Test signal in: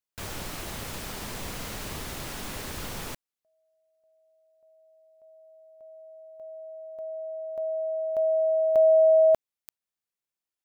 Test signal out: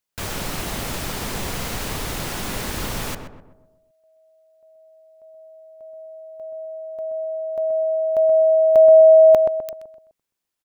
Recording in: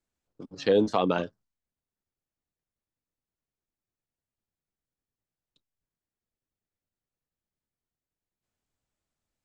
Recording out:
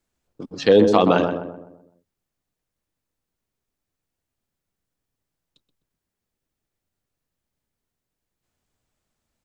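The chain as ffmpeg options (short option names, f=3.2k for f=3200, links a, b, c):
-filter_complex "[0:a]asplit=2[a][b];[b]adelay=127,lowpass=f=1.3k:p=1,volume=-5.5dB,asplit=2[c][d];[d]adelay=127,lowpass=f=1.3k:p=1,volume=0.47,asplit=2[e][f];[f]adelay=127,lowpass=f=1.3k:p=1,volume=0.47,asplit=2[g][h];[h]adelay=127,lowpass=f=1.3k:p=1,volume=0.47,asplit=2[i][j];[j]adelay=127,lowpass=f=1.3k:p=1,volume=0.47,asplit=2[k][l];[l]adelay=127,lowpass=f=1.3k:p=1,volume=0.47[m];[a][c][e][g][i][k][m]amix=inputs=7:normalize=0,volume=8dB"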